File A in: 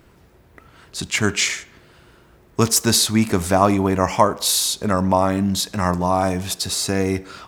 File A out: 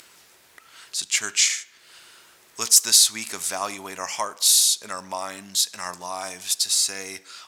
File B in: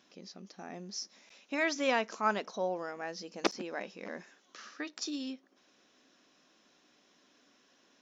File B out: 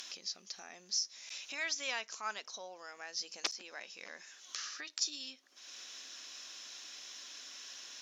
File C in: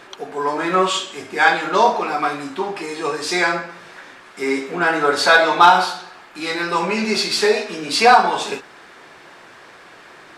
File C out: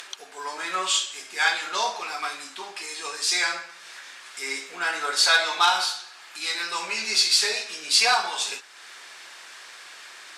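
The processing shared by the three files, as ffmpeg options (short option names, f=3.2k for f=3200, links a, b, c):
-af "acompressor=mode=upward:threshold=-30dB:ratio=2.5,bandpass=f=7.8k:t=q:w=0.65:csg=0,volume=4dB"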